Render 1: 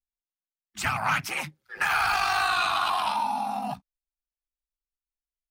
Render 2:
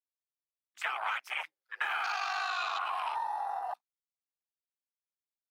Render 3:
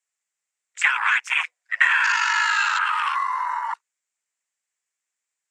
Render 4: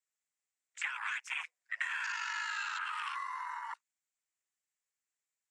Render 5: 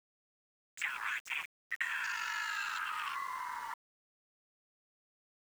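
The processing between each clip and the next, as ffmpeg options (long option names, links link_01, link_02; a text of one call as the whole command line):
ffmpeg -i in.wav -filter_complex "[0:a]highpass=frequency=460:width=0.5412,highpass=frequency=460:width=1.3066,afwtdn=0.0251,acrossover=split=720|3000[link_01][link_02][link_03];[link_01]acompressor=threshold=-48dB:ratio=4[link_04];[link_02]acompressor=threshold=-34dB:ratio=4[link_05];[link_03]acompressor=threshold=-43dB:ratio=4[link_06];[link_04][link_05][link_06]amix=inputs=3:normalize=0" out.wav
ffmpeg -i in.wav -af "lowpass=frequency=7300:width_type=q:width=5.1,afreqshift=180,equalizer=frequency=250:width_type=o:width=1:gain=-11,equalizer=frequency=2000:width_type=o:width=1:gain=10,equalizer=frequency=4000:width_type=o:width=1:gain=-4,volume=8dB" out.wav
ffmpeg -i in.wav -filter_complex "[0:a]acrossover=split=1300|4400[link_01][link_02][link_03];[link_01]acompressor=threshold=-39dB:ratio=4[link_04];[link_02]acompressor=threshold=-29dB:ratio=4[link_05];[link_03]acompressor=threshold=-41dB:ratio=4[link_06];[link_04][link_05][link_06]amix=inputs=3:normalize=0,volume=-9dB" out.wav
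ffmpeg -i in.wav -af "aeval=exprs='val(0)*gte(abs(val(0)),0.00398)':channel_layout=same" out.wav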